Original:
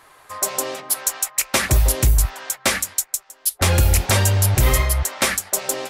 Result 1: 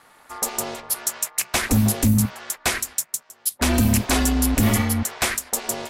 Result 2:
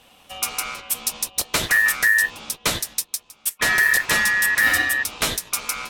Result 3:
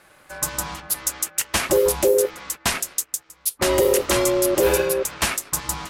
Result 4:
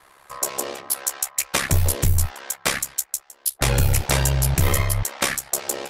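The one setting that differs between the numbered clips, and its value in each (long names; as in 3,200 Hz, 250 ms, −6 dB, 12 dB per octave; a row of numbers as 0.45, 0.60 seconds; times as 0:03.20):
ring modulation, frequency: 160, 1,800, 460, 34 Hertz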